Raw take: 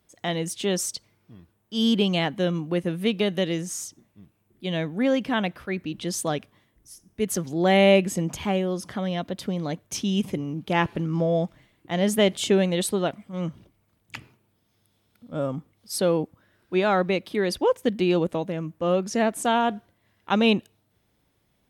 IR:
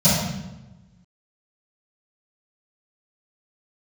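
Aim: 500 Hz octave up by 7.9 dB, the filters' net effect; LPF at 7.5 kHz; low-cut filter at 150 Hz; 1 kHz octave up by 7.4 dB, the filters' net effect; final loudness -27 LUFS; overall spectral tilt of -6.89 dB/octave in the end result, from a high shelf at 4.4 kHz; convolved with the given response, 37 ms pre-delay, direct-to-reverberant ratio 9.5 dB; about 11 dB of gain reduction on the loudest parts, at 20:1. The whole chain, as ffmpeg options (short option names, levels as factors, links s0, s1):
-filter_complex "[0:a]highpass=150,lowpass=7500,equalizer=f=500:t=o:g=8,equalizer=f=1000:t=o:g=7,highshelf=f=4400:g=-7.5,acompressor=threshold=0.141:ratio=20,asplit=2[s0][s1];[1:a]atrim=start_sample=2205,adelay=37[s2];[s1][s2]afir=irnorm=-1:irlink=0,volume=0.0355[s3];[s0][s3]amix=inputs=2:normalize=0,volume=0.562"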